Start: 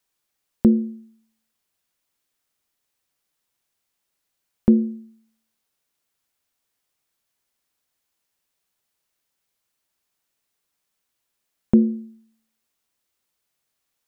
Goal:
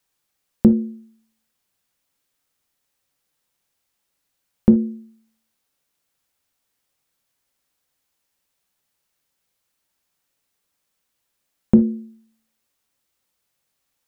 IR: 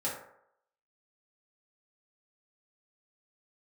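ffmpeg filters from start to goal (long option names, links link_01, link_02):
-filter_complex "[0:a]asplit=2[link_01][link_02];[1:a]atrim=start_sample=2205,atrim=end_sample=3528,lowshelf=frequency=210:gain=10[link_03];[link_02][link_03]afir=irnorm=-1:irlink=0,volume=-13.5dB[link_04];[link_01][link_04]amix=inputs=2:normalize=0,volume=1dB"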